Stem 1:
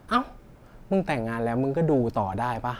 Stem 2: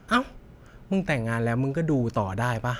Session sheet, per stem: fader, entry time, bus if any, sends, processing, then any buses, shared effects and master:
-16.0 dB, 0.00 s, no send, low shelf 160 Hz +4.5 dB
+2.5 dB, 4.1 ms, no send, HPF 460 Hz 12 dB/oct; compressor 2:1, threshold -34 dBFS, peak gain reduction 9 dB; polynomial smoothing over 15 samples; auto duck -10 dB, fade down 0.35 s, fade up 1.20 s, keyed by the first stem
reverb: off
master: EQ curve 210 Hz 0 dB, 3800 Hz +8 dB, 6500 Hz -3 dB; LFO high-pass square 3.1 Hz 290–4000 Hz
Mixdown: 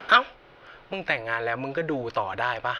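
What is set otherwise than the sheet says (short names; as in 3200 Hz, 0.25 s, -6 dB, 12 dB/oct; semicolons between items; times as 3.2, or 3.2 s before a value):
stem 2 +2.5 dB -> +13.5 dB; master: missing LFO high-pass square 3.1 Hz 290–4000 Hz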